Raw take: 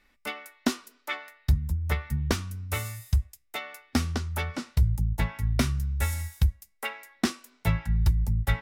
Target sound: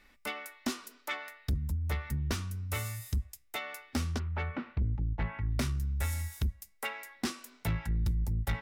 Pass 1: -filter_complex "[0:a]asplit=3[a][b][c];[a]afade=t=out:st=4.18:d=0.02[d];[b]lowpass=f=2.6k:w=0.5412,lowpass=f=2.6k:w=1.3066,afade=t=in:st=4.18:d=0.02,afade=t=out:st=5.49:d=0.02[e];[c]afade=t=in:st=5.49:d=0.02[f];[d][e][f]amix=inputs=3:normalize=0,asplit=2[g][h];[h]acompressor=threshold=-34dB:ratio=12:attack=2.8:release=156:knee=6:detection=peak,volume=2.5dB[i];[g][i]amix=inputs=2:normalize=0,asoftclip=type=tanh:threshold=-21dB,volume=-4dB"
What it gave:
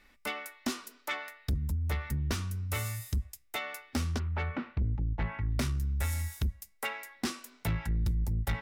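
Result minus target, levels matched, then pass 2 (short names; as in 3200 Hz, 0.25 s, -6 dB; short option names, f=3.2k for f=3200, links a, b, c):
compressor: peak gain reduction -7.5 dB
-filter_complex "[0:a]asplit=3[a][b][c];[a]afade=t=out:st=4.18:d=0.02[d];[b]lowpass=f=2.6k:w=0.5412,lowpass=f=2.6k:w=1.3066,afade=t=in:st=4.18:d=0.02,afade=t=out:st=5.49:d=0.02[e];[c]afade=t=in:st=5.49:d=0.02[f];[d][e][f]amix=inputs=3:normalize=0,asplit=2[g][h];[h]acompressor=threshold=-42dB:ratio=12:attack=2.8:release=156:knee=6:detection=peak,volume=2.5dB[i];[g][i]amix=inputs=2:normalize=0,asoftclip=type=tanh:threshold=-21dB,volume=-4dB"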